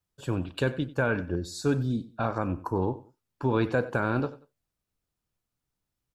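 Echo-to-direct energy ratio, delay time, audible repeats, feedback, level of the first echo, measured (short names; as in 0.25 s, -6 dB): -17.5 dB, 93 ms, 2, 27%, -18.0 dB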